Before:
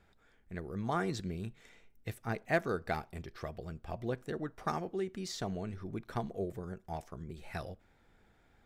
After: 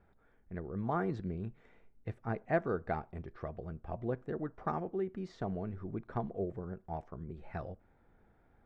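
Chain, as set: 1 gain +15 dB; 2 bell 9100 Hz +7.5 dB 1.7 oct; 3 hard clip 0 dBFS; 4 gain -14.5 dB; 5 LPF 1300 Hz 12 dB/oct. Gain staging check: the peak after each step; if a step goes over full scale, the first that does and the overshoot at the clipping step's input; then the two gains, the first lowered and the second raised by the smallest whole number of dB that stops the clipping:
-4.0, -3.0, -3.0, -17.5, -18.5 dBFS; no overload

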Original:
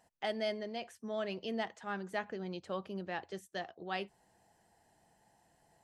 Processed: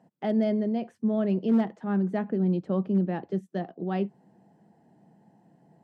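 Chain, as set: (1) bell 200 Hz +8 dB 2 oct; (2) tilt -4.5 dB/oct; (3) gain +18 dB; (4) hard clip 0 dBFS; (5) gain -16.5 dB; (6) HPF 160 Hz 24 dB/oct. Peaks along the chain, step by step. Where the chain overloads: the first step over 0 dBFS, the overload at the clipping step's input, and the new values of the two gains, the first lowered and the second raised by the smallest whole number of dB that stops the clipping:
-22.0, -14.5, +3.5, 0.0, -16.5, -14.5 dBFS; step 3, 3.5 dB; step 3 +14 dB, step 5 -12.5 dB

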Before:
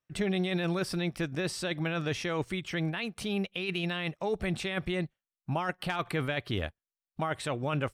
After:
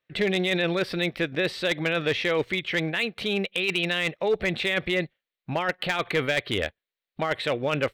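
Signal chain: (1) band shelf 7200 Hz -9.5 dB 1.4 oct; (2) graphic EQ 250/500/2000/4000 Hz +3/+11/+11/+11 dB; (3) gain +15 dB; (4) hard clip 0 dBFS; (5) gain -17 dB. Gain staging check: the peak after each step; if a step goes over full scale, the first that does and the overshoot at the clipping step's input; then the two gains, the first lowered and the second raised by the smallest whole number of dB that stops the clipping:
-17.5, -5.5, +9.5, 0.0, -17.0 dBFS; step 3, 9.5 dB; step 3 +5 dB, step 5 -7 dB

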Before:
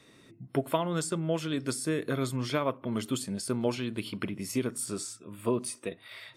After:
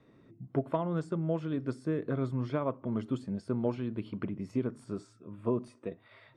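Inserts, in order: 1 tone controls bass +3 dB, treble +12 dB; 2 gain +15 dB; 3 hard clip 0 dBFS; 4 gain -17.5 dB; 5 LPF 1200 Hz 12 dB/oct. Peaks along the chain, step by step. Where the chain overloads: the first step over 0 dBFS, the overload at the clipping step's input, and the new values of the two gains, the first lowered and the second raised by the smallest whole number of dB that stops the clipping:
-11.0, +4.0, 0.0, -17.5, -17.0 dBFS; step 2, 4.0 dB; step 2 +11 dB, step 4 -13.5 dB

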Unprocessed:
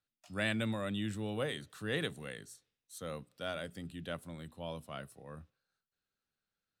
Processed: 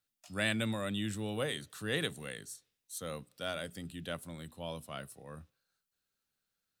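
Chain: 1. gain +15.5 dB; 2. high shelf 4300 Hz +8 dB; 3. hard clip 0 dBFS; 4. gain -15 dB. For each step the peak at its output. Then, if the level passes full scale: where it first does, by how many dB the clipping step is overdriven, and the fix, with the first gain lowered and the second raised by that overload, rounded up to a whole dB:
-3.5, -1.5, -1.5, -16.5 dBFS; no overload

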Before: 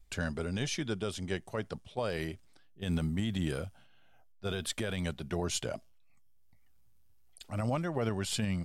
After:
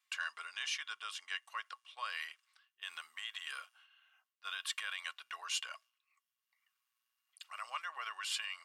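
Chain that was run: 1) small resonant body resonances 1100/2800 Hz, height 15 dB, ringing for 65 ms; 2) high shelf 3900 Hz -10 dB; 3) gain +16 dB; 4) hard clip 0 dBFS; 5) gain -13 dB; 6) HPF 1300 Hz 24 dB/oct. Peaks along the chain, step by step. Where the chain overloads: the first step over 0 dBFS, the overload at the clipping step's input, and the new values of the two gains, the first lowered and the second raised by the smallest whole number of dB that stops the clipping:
-19.0, -20.0, -4.0, -4.0, -17.0, -23.0 dBFS; no overload

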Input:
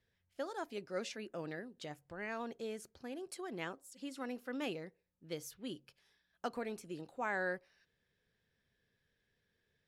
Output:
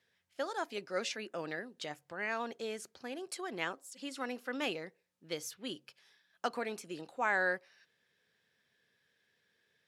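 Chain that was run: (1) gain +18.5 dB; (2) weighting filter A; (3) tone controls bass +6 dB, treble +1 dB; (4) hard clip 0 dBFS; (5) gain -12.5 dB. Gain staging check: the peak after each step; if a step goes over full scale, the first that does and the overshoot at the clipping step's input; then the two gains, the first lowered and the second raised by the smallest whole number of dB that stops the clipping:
-6.5, -6.0, -6.0, -6.0, -18.5 dBFS; no overload

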